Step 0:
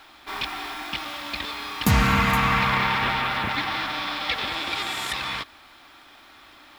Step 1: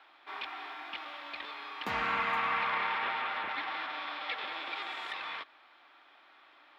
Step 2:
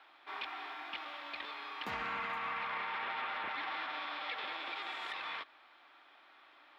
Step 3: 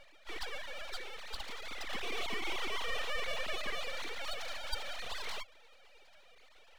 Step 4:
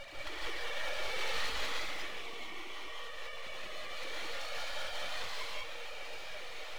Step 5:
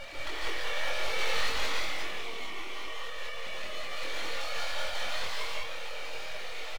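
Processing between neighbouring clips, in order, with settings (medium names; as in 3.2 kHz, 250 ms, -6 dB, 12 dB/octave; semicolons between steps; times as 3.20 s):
three-band isolator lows -24 dB, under 340 Hz, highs -24 dB, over 3.7 kHz; trim -8.5 dB
peak limiter -28.5 dBFS, peak gain reduction 9 dB; trim -1.5 dB
formants replaced by sine waves; full-wave rectifier; trim +4.5 dB
compressor with a negative ratio -46 dBFS, ratio -1; gated-style reverb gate 220 ms rising, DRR -5 dB; trim +2.5 dB
doubling 24 ms -3 dB; trim +3.5 dB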